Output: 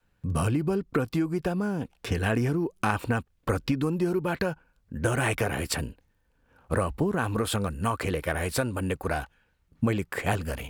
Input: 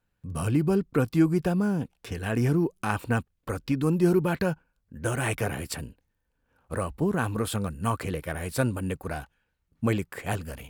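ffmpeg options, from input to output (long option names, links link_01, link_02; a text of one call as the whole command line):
ffmpeg -i in.wav -af "highshelf=frequency=6900:gain=-5.5,acompressor=threshold=-28dB:ratio=10,adynamicequalizer=threshold=0.00562:dfrequency=150:dqfactor=0.75:tfrequency=150:tqfactor=0.75:attack=5:release=100:ratio=0.375:range=3:mode=cutabove:tftype=bell,volume=7.5dB" out.wav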